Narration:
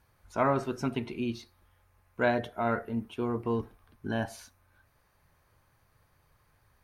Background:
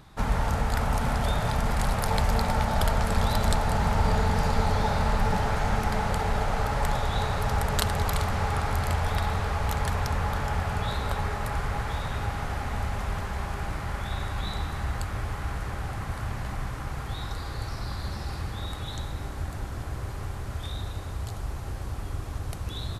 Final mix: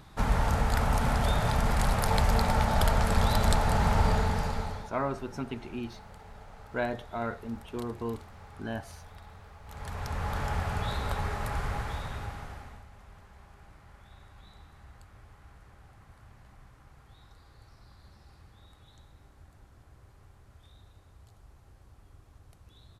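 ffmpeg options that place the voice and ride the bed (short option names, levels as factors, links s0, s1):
-filter_complex "[0:a]adelay=4550,volume=0.596[s0];[1:a]volume=8.91,afade=t=out:st=3.99:d=0.92:silence=0.0794328,afade=t=in:st=9.65:d=0.78:silence=0.105925,afade=t=out:st=11.69:d=1.15:silence=0.112202[s1];[s0][s1]amix=inputs=2:normalize=0"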